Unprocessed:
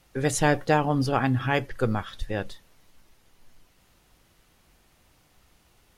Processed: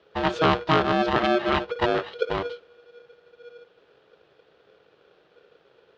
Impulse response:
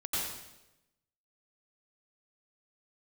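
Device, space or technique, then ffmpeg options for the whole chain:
ring modulator pedal into a guitar cabinet: -af "aeval=exprs='val(0)*sgn(sin(2*PI*480*n/s))':channel_layout=same,lowpass=10000,highpass=81,equalizer=frequency=100:width_type=q:width=4:gain=-5,equalizer=frequency=250:width_type=q:width=4:gain=-9,equalizer=frequency=400:width_type=q:width=4:gain=5,equalizer=frequency=950:width_type=q:width=4:gain=-3,equalizer=frequency=2200:width_type=q:width=4:gain=-8,lowpass=frequency=3600:width=0.5412,lowpass=frequency=3600:width=1.3066,volume=3dB"

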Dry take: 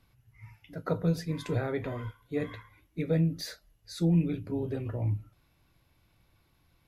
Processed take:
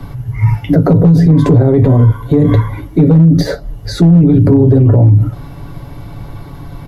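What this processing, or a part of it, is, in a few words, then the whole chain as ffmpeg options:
mastering chain: -filter_complex "[0:a]equalizer=frequency=930:width_type=o:width=0.77:gain=3.5,bandreject=frequency=2500:width=8.7,aecho=1:1:7.1:0.47,acrossover=split=99|220|690|4400[link_01][link_02][link_03][link_04][link_05];[link_01]acompressor=threshold=-47dB:ratio=4[link_06];[link_02]acompressor=threshold=-27dB:ratio=4[link_07];[link_03]acompressor=threshold=-35dB:ratio=4[link_08];[link_04]acompressor=threshold=-55dB:ratio=4[link_09];[link_05]acompressor=threshold=-58dB:ratio=4[link_10];[link_06][link_07][link_08][link_09][link_10]amix=inputs=5:normalize=0,acompressor=threshold=-33dB:ratio=2.5,asoftclip=type=tanh:threshold=-26.5dB,tiltshelf=frequency=1100:gain=8,asoftclip=type=hard:threshold=-22.5dB,alimiter=level_in=33dB:limit=-1dB:release=50:level=0:latency=1,volume=-1dB"

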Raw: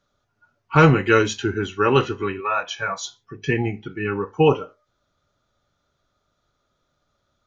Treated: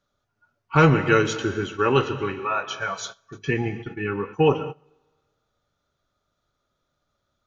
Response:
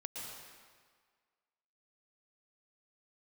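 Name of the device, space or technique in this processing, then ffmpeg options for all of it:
keyed gated reverb: -filter_complex "[0:a]asplit=3[link_01][link_02][link_03];[1:a]atrim=start_sample=2205[link_04];[link_02][link_04]afir=irnorm=-1:irlink=0[link_05];[link_03]apad=whole_len=329173[link_06];[link_05][link_06]sidechaingate=range=-23dB:threshold=-35dB:ratio=16:detection=peak,volume=-6.5dB[link_07];[link_01][link_07]amix=inputs=2:normalize=0,volume=-4.5dB"

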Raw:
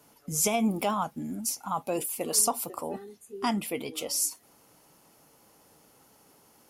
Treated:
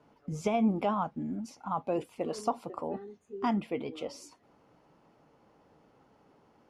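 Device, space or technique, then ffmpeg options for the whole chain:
phone in a pocket: -filter_complex "[0:a]asettb=1/sr,asplit=3[link_01][link_02][link_03];[link_01]atrim=end=3.024[link_04];[link_02]atrim=start=3.02:end=3.54,asetpts=PTS-STARTPTS,afade=type=in:duration=0.004:curve=qsin,afade=type=out:start_time=0.516:duration=0.004:curve=qsin,equalizer=frequency=6500:width_type=o:width=0.23:gain=8.5[link_05];[link_03]atrim=start=3.536[link_06];[link_04][link_05]acrossfade=duration=0.004:curve1=hsin:curve2=qsin[link_07];[link_07][link_06]acrossfade=duration=0.004:curve1=qsin:curve2=hsin,lowpass=4000,highshelf=frequency=2200:gain=-12"

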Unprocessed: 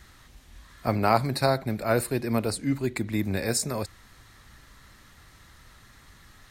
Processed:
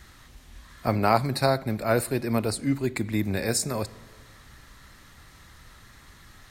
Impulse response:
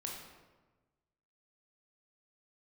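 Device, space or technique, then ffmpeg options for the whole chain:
ducked reverb: -filter_complex "[0:a]asplit=3[link_01][link_02][link_03];[1:a]atrim=start_sample=2205[link_04];[link_02][link_04]afir=irnorm=-1:irlink=0[link_05];[link_03]apad=whole_len=286938[link_06];[link_05][link_06]sidechaincompress=threshold=-29dB:ratio=8:attack=44:release=1070,volume=-8dB[link_07];[link_01][link_07]amix=inputs=2:normalize=0"

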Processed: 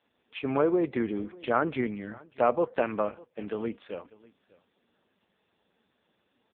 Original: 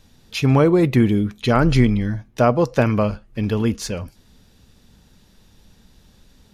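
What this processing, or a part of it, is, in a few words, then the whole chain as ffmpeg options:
satellite phone: -af "highpass=370,lowpass=3100,aecho=1:1:595:0.0708,volume=-5.5dB" -ar 8000 -c:a libopencore_amrnb -b:a 5150

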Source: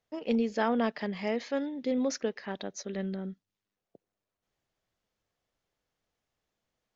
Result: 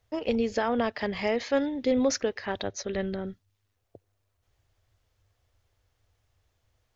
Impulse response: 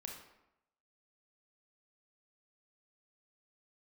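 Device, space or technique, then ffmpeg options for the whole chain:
car stereo with a boomy subwoofer: -filter_complex "[0:a]lowshelf=frequency=130:width_type=q:width=3:gain=10,alimiter=limit=-23dB:level=0:latency=1:release=258,asettb=1/sr,asplit=3[link_01][link_02][link_03];[link_01]atrim=end=2.684[link_04];[link_02]atrim=start=2.68:end=3.27,asetpts=PTS-STARTPTS,afade=type=in:duration=0.004:curve=qsin,afade=type=out:start_time=0.586:duration=0.004:curve=qsin,lowpass=5800[link_05];[link_03]atrim=start=3.266[link_06];[link_04][link_05]acrossfade=duration=0.004:curve1=hsin:curve2=qsin[link_07];[link_07][link_06]acrossfade=duration=0.004:curve1=qsin:curve2=hsin,volume=7.5dB"

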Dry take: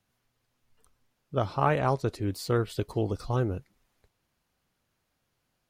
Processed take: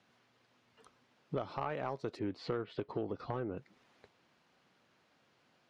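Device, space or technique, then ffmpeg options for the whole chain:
AM radio: -filter_complex "[0:a]asettb=1/sr,asplit=3[link_01][link_02][link_03];[link_01]atrim=end=2.194[link_04];[link_02]atrim=start=2.19:end=3.58,asetpts=PTS-STARTPTS,afade=type=in:duration=0.004:curve=qsin,afade=type=out:start_time=1.386:duration=0.004:curve=qsin,lowpass=2800[link_05];[link_03]atrim=start=3.576[link_06];[link_04][link_05]acrossfade=duration=0.004:curve1=hsin:curve2=qsin[link_07];[link_07][link_06]acrossfade=duration=0.004:curve1=qsin:curve2=hsin,highpass=190,lowpass=4300,acompressor=threshold=-42dB:ratio=8,asoftclip=type=tanh:threshold=-33.5dB,volume=9dB"

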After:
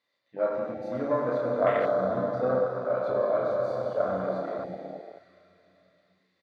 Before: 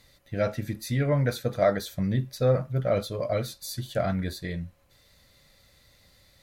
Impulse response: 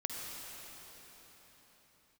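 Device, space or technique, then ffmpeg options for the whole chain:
station announcement: -filter_complex "[0:a]highpass=360,lowpass=3600,equalizer=frequency=1100:width_type=o:width=0.23:gain=5.5,aecho=1:1:32.07|102:0.794|0.355[link_01];[1:a]atrim=start_sample=2205[link_02];[link_01][link_02]afir=irnorm=-1:irlink=0,asettb=1/sr,asplit=3[link_03][link_04][link_05];[link_03]atrim=end=2.664[link_06];[link_04]atrim=start=2.66:end=3.08,asetpts=PTS-STARTPTS,afade=type=in:duration=0.004:curve=qsin,afade=type=out:start_time=0.416:duration=0.004:curve=qsin,lowshelf=frequency=450:gain=-8[link_07];[link_05]atrim=start=3.076[link_08];[link_06][link_07]acrossfade=duration=0.004:curve1=hsin:curve2=qsin[link_09];[link_09][link_08]acrossfade=duration=0.004:curve1=qsin:curve2=hsin,afwtdn=0.0316"

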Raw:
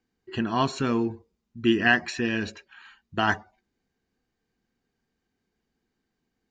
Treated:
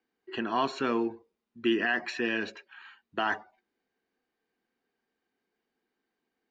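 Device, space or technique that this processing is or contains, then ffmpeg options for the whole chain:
DJ mixer with the lows and highs turned down: -filter_complex "[0:a]acrossover=split=260 4200:gain=0.1 1 0.224[link_01][link_02][link_03];[link_01][link_02][link_03]amix=inputs=3:normalize=0,alimiter=limit=-17dB:level=0:latency=1:release=25"

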